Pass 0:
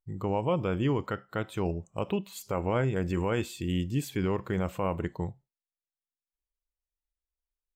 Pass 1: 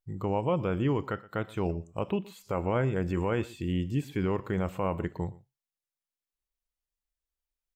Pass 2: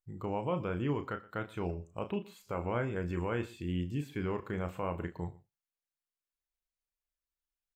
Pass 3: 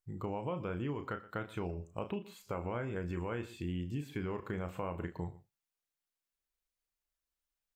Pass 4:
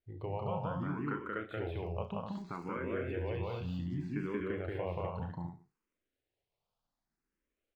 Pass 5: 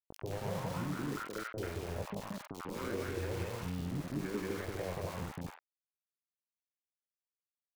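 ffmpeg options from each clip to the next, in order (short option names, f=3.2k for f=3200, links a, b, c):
-filter_complex "[0:a]acrossover=split=2800[a][b];[b]acompressor=threshold=-52dB:ratio=4:attack=1:release=60[c];[a][c]amix=inputs=2:normalize=0,aecho=1:1:120:0.0891"
-filter_complex "[0:a]equalizer=f=1.7k:w=1.2:g=4,bandreject=f=1.9k:w=24,asplit=2[a][b];[b]adelay=34,volume=-9dB[c];[a][c]amix=inputs=2:normalize=0,volume=-6.5dB"
-af "acompressor=threshold=-35dB:ratio=6,volume=1.5dB"
-filter_complex "[0:a]aecho=1:1:180.8|250.7:0.891|0.562,acrossover=split=5000[a][b];[b]acrusher=samples=31:mix=1:aa=0.000001:lfo=1:lforange=18.6:lforate=1[c];[a][c]amix=inputs=2:normalize=0,asplit=2[d][e];[e]afreqshift=0.65[f];[d][f]amix=inputs=2:normalize=1,volume=1dB"
-filter_complex "[0:a]aeval=exprs='val(0)*gte(abs(val(0)),0.0126)':c=same,acompressor=mode=upward:threshold=-38dB:ratio=2.5,acrossover=split=820|3000[a][b][c];[c]adelay=40[d];[b]adelay=90[e];[a][e][d]amix=inputs=3:normalize=0"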